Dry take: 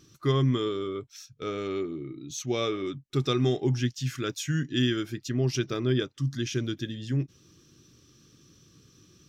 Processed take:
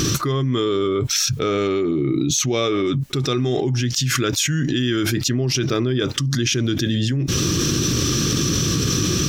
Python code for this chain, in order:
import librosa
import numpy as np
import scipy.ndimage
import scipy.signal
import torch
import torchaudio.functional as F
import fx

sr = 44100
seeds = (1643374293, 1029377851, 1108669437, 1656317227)

y = fx.env_flatten(x, sr, amount_pct=100)
y = F.gain(torch.from_numpy(y), 1.0).numpy()